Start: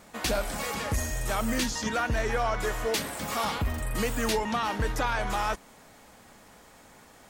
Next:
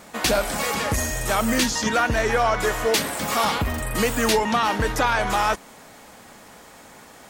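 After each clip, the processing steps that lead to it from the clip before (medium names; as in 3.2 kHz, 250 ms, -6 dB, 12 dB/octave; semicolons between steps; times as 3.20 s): bass shelf 89 Hz -8.5 dB; trim +8 dB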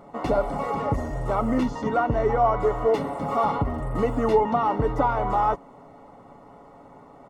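Savitzky-Golay filter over 65 samples; comb 7.1 ms, depth 41%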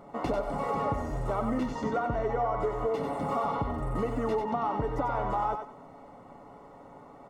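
compression, threshold -24 dBFS, peak gain reduction 9.5 dB; on a send: thinning echo 94 ms, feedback 27%, level -5.5 dB; on the sum: trim -2.5 dB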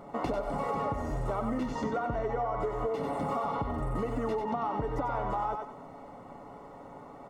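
compression 3:1, threshold -32 dBFS, peak gain reduction 6 dB; trim +2.5 dB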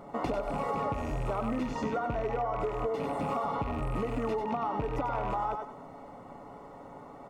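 rattle on loud lows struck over -37 dBFS, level -37 dBFS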